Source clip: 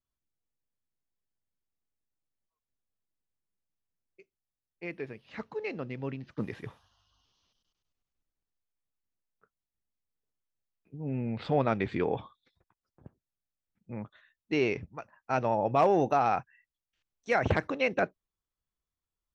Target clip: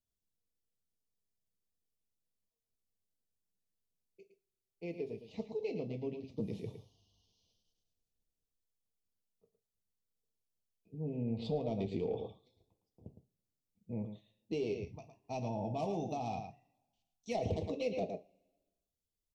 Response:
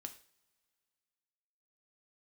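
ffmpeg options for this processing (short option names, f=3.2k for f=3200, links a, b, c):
-filter_complex "[0:a]asettb=1/sr,asplit=3[a][b][c];[a]atrim=end=14.724[d];[b]atrim=start=14.72:end=17.35,asetpts=PTS-STARTPTS,afade=t=in:d=0.004:c=qsin,afade=t=out:st=2.626:d=0.004:c=qsin,equalizer=f=470:t=o:w=0.92:g=-12[e];[c]atrim=start=17.346[f];[d][e]acrossfade=d=0.004:c1=hsin:c2=qsin[g];[g][f]acrossfade=d=0.004:c1=qsin:c2=hsin,aecho=1:1:111:0.335,asoftclip=type=tanh:threshold=-18.5dB,asuperstop=centerf=1500:order=4:qfactor=0.57,acompressor=threshold=-32dB:ratio=6[h];[1:a]atrim=start_sample=2205,asetrate=79380,aresample=44100[i];[h][i]afir=irnorm=-1:irlink=0,volume=9dB"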